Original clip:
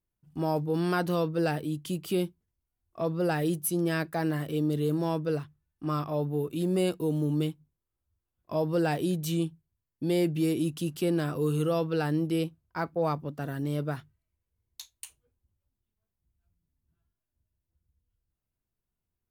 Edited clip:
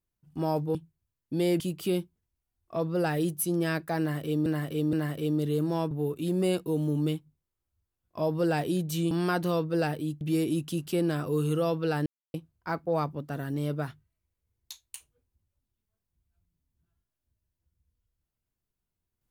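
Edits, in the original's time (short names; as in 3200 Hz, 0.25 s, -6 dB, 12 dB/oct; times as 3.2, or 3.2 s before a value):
0.75–1.85 swap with 9.45–10.3
4.24–4.71 loop, 3 plays
5.22–6.25 cut
12.15–12.43 mute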